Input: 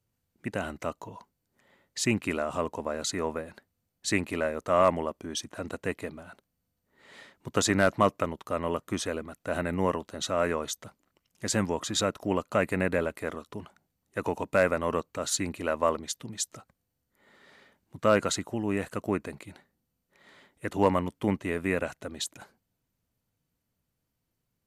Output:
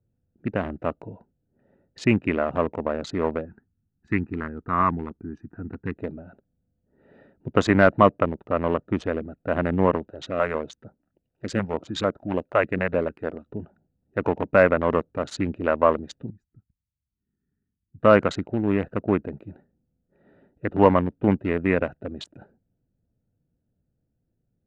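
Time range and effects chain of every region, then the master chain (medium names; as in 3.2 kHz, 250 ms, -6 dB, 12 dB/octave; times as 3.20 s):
3.45–5.97 s: distance through air 53 m + static phaser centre 1.4 kHz, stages 4
10.10–13.46 s: bass shelf 240 Hz -6 dB + step-sequenced notch 6.7 Hz 210–2700 Hz
16.30–18.00 s: amplifier tone stack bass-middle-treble 10-0-1 + waveshaping leveller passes 1 + static phaser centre 1.4 kHz, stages 4
whole clip: local Wiener filter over 41 samples; low-pass 2.5 kHz 12 dB/octave; trim +7.5 dB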